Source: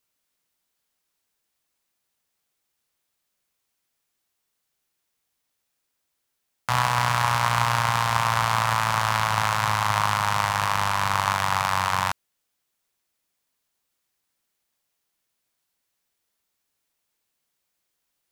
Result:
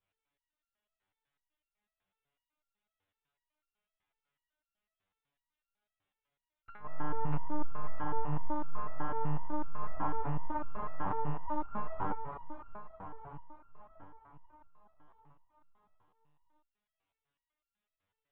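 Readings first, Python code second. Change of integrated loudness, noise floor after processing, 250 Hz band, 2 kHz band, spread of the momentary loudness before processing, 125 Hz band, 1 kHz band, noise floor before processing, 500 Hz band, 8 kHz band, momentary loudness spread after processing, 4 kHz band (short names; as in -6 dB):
-17.0 dB, under -85 dBFS, -2.0 dB, -26.0 dB, 3 LU, -13.0 dB, -16.0 dB, -78 dBFS, -8.5 dB, under -40 dB, 15 LU, under -35 dB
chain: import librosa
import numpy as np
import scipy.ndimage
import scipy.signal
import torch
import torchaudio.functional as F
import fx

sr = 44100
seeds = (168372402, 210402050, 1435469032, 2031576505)

p1 = fx.lowpass(x, sr, hz=2100.0, slope=6)
p2 = fx.env_lowpass_down(p1, sr, base_hz=590.0, full_db=-20.5)
p3 = fx.peak_eq(p2, sr, hz=190.0, db=-8.5, octaves=0.54)
p4 = fx.gate_flip(p3, sr, shuts_db=-13.0, range_db=-27)
p5 = np.clip(p4, -10.0 ** (-15.5 / 20.0), 10.0 ** (-15.5 / 20.0))
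p6 = p5 + fx.echo_feedback(p5, sr, ms=640, feedback_pct=56, wet_db=-9, dry=0)
p7 = fx.lpc_monotone(p6, sr, seeds[0], pitch_hz=150.0, order=10)
p8 = fx.resonator_held(p7, sr, hz=8.0, low_hz=97.0, high_hz=1400.0)
y = F.gain(torch.from_numpy(p8), 9.0).numpy()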